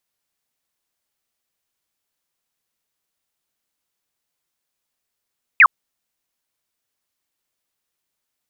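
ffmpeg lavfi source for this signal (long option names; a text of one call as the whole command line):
ffmpeg -f lavfi -i "aevalsrc='0.562*clip(t/0.002,0,1)*clip((0.06-t)/0.002,0,1)*sin(2*PI*2700*0.06/log(980/2700)*(exp(log(980/2700)*t/0.06)-1))':duration=0.06:sample_rate=44100" out.wav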